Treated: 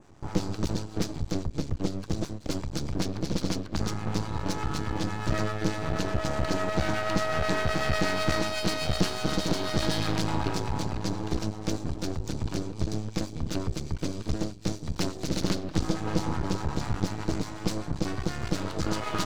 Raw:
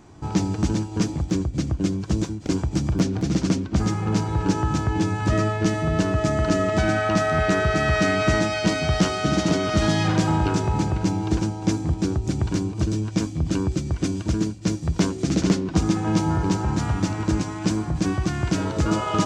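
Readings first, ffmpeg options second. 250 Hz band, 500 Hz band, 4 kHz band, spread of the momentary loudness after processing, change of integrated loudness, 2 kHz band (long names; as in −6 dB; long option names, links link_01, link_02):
−8.5 dB, −6.5 dB, −2.5 dB, 6 LU, −7.5 dB, −6.5 dB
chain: -filter_complex "[0:a]adynamicequalizer=threshold=0.00355:dfrequency=4200:dqfactor=2.3:tfrequency=4200:tqfactor=2.3:attack=5:release=100:ratio=0.375:range=4:mode=boostabove:tftype=bell,acrossover=split=700[link_01][link_02];[link_01]aeval=exprs='val(0)*(1-0.5/2+0.5/2*cos(2*PI*8.1*n/s))':channel_layout=same[link_03];[link_02]aeval=exprs='val(0)*(1-0.5/2-0.5/2*cos(2*PI*8.1*n/s))':channel_layout=same[link_04];[link_03][link_04]amix=inputs=2:normalize=0,aeval=exprs='max(val(0),0)':channel_layout=same,volume=-1dB"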